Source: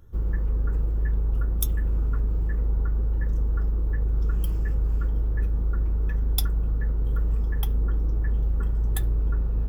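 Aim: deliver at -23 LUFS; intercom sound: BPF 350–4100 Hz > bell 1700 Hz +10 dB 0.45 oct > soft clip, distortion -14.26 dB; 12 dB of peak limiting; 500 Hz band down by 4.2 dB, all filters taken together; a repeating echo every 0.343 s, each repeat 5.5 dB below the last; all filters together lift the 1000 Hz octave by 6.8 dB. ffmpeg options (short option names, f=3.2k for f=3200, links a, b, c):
-af "equalizer=f=500:t=o:g=-5,equalizer=f=1k:t=o:g=8,alimiter=limit=-19.5dB:level=0:latency=1,highpass=350,lowpass=4.1k,equalizer=f=1.7k:t=o:w=0.45:g=10,aecho=1:1:343|686|1029|1372|1715|2058|2401:0.531|0.281|0.149|0.079|0.0419|0.0222|0.0118,asoftclip=threshold=-29.5dB,volume=18dB"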